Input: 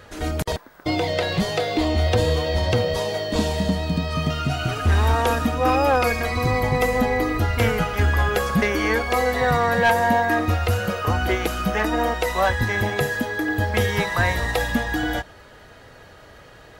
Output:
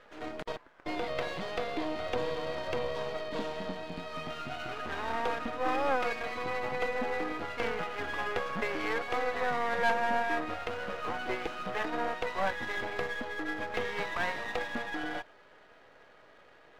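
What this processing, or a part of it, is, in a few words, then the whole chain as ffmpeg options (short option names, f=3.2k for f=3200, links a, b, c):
crystal radio: -af "highpass=320,lowpass=2.9k,aeval=exprs='if(lt(val(0),0),0.251*val(0),val(0))':c=same,volume=-6.5dB"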